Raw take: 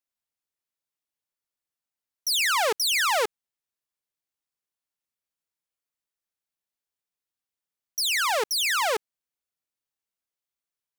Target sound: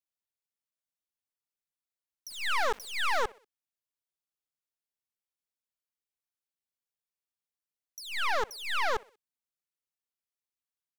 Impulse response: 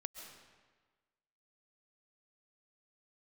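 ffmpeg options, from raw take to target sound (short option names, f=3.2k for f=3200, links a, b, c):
-filter_complex "[0:a]aecho=1:1:63|126|189:0.0794|0.0373|0.0175,acrossover=split=190|2400[a][b][c];[b]aeval=exprs='0.188*(cos(1*acos(clip(val(0)/0.188,-1,1)))-cos(1*PI/2))+0.0422*(cos(4*acos(clip(val(0)/0.188,-1,1)))-cos(4*PI/2))+0.00531*(cos(7*acos(clip(val(0)/0.188,-1,1)))-cos(7*PI/2))+0.0299*(cos(8*acos(clip(val(0)/0.188,-1,1)))-cos(8*PI/2))':c=same[d];[c]acompressor=threshold=-40dB:ratio=4[e];[a][d][e]amix=inputs=3:normalize=0,asplit=3[f][g][h];[f]afade=t=out:st=2.29:d=0.02[i];[g]aeval=exprs='val(0)*gte(abs(val(0)),0.015)':c=same,afade=t=in:st=2.29:d=0.02,afade=t=out:st=3.23:d=0.02[j];[h]afade=t=in:st=3.23:d=0.02[k];[i][j][k]amix=inputs=3:normalize=0,volume=-6.5dB"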